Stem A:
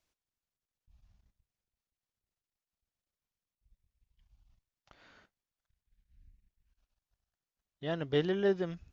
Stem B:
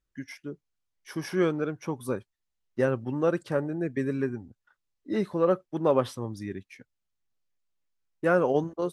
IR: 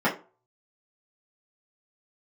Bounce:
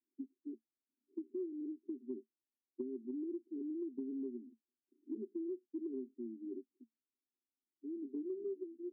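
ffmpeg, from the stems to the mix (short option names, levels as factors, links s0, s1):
-filter_complex "[0:a]volume=1,asplit=2[s0][s1];[1:a]volume=0.562[s2];[s1]apad=whole_len=393557[s3];[s2][s3]sidechaincompress=threshold=0.00562:ratio=8:attack=16:release=290[s4];[s0][s4]amix=inputs=2:normalize=0,asuperpass=centerf=300:order=20:qfactor=1.7,acompressor=threshold=0.0126:ratio=10"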